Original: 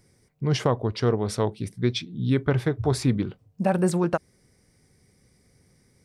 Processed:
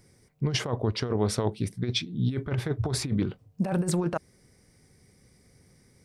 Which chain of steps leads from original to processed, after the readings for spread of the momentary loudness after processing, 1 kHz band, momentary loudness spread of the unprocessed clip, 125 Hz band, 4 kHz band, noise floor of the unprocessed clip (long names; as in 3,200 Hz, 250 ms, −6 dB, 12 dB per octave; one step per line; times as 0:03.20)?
5 LU, −6.0 dB, 6 LU, −3.0 dB, +1.5 dB, −64 dBFS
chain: compressor whose output falls as the input rises −24 dBFS, ratio −0.5
level −1 dB